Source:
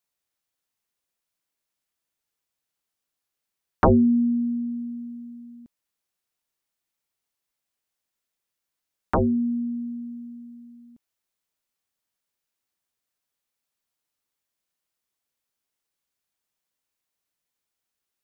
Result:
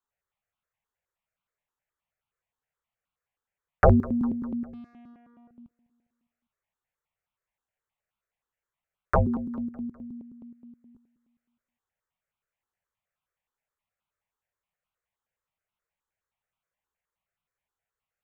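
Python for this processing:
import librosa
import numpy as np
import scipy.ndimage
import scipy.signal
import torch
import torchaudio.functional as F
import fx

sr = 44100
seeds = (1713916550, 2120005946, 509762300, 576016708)

y = fx.wiener(x, sr, points=9)
y = fx.peak_eq(y, sr, hz=300.0, db=-12.5, octaves=0.46)
y = fx.tube_stage(y, sr, drive_db=54.0, bias=0.55, at=(4.73, 5.51))
y = fx.echo_feedback(y, sr, ms=202, feedback_pct=58, wet_db=-21.5)
y = fx.phaser_held(y, sr, hz=9.5, low_hz=620.0, high_hz=1800.0)
y = y * librosa.db_to_amplitude(4.0)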